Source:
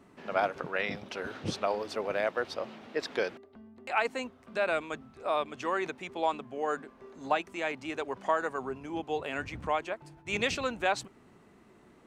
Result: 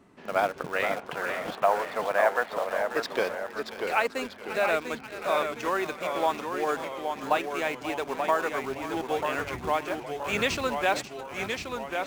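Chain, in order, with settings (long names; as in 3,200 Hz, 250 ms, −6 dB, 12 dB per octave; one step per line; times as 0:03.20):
0:00.83–0:02.78: loudspeaker in its box 310–3,200 Hz, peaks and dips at 370 Hz −9 dB, 720 Hz +7 dB, 1,000 Hz +7 dB, 1,700 Hz +6 dB, 2,500 Hz −3 dB
feedback echo with a high-pass in the loop 536 ms, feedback 66%, high-pass 760 Hz, level −12 dB
in parallel at −8 dB: bit reduction 6 bits
on the sum: delay with pitch and tempo change per echo 449 ms, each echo −1 semitone, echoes 3, each echo −6 dB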